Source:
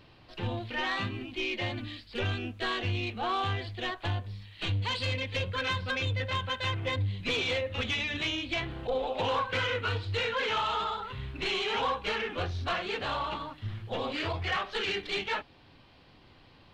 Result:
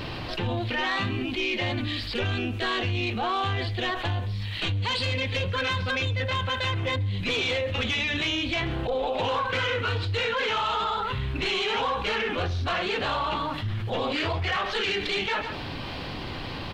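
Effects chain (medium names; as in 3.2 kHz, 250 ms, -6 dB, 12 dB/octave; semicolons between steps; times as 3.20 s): delay 136 ms -23 dB; level flattener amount 70%; trim +1.5 dB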